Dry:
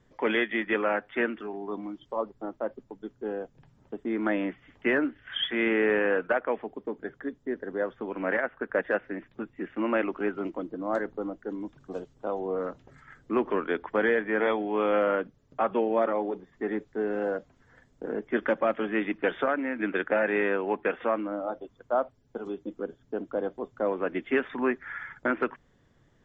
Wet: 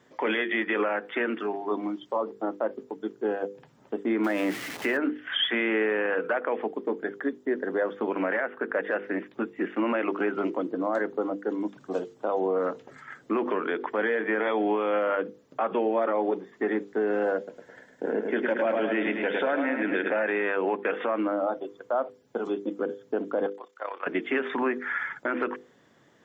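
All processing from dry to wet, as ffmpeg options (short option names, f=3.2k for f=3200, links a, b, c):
-filter_complex "[0:a]asettb=1/sr,asplit=3[a][b][c];[a]atrim=end=4.244[d];[b]atrim=start=4.24:end=4.97,asetpts=PTS-STARTPTS,afade=t=in:d=0.004:c=qsin,afade=t=out:st=0.726:d=0.004:c=qsin,aeval=exprs='val(0)+0.5*0.0112*sgn(val(0))':c=same,bandreject=f=1.1k:w=25[e];[c]atrim=start=4.966[f];[d][e]acrossfade=d=0.004:c1=hsin:c2=qsin[g];[g][f]acrossfade=d=0.004:c1=qsin:c2=hsin,asettb=1/sr,asplit=3[h][i][j];[h]atrim=end=17.374[k];[i]atrim=start=17.37:end=20.1,asetpts=PTS-STARTPTS,afade=t=in:d=0.004:c=qsin,afade=t=out:st=2.726:d=0.004:c=qsin,bandreject=f=1.2k:w=5,aecho=1:1:106|212|318|424|530|636:0.398|0.215|0.116|0.0627|0.0339|0.0183,atrim=end_sample=120393[l];[j]atrim=start=20.096[m];[k][l]acrossfade=d=0.004:c1=hsin:c2=qsin[n];[n][m]acrossfade=d=0.004:c1=qsin:c2=hsin,asettb=1/sr,asplit=3[o][p][q];[o]atrim=end=23.464[r];[p]atrim=start=23.46:end=24.07,asetpts=PTS-STARTPTS,afade=t=in:d=0.004:c=qsin,afade=t=out:st=0.606:d=0.004:c=qsin,highpass=1.2k,tremolo=f=33:d=0.75[s];[q]atrim=start=24.066[t];[r][s]acrossfade=d=0.004:c1=hsin:c2=qsin[u];[u][t]acrossfade=d=0.004:c1=qsin:c2=hsin,bandreject=f=50:t=h:w=6,bandreject=f=100:t=h:w=6,bandreject=f=150:t=h:w=6,bandreject=f=200:t=h:w=6,bandreject=f=250:t=h:w=6,bandreject=f=300:t=h:w=6,bandreject=f=350:t=h:w=6,bandreject=f=400:t=h:w=6,bandreject=f=450:t=h:w=6,bandreject=f=500:t=h:w=6,alimiter=level_in=1dB:limit=-24dB:level=0:latency=1:release=78,volume=-1dB,highpass=230,volume=8dB"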